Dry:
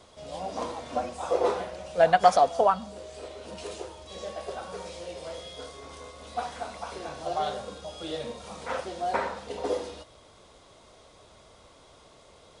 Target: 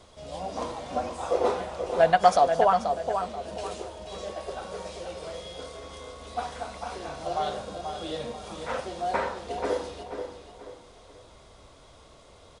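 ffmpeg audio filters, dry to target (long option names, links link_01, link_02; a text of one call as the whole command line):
ffmpeg -i in.wav -filter_complex "[0:a]lowshelf=frequency=73:gain=9,asplit=2[link_01][link_02];[link_02]adelay=484,lowpass=frequency=4200:poles=1,volume=-7dB,asplit=2[link_03][link_04];[link_04]adelay=484,lowpass=frequency=4200:poles=1,volume=0.35,asplit=2[link_05][link_06];[link_06]adelay=484,lowpass=frequency=4200:poles=1,volume=0.35,asplit=2[link_07][link_08];[link_08]adelay=484,lowpass=frequency=4200:poles=1,volume=0.35[link_09];[link_01][link_03][link_05][link_07][link_09]amix=inputs=5:normalize=0" out.wav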